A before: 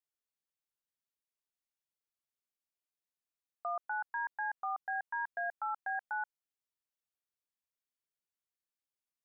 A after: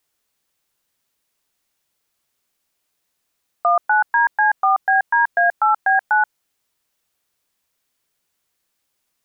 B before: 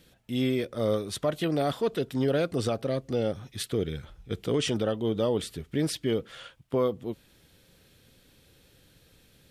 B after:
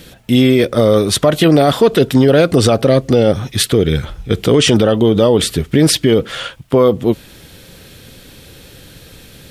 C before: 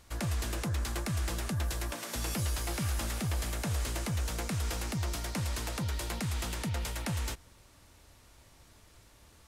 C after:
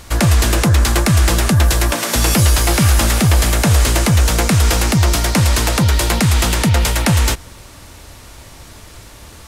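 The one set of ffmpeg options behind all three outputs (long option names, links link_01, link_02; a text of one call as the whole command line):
ffmpeg -i in.wav -af "alimiter=level_in=21.5dB:limit=-1dB:release=50:level=0:latency=1,volume=-1dB" out.wav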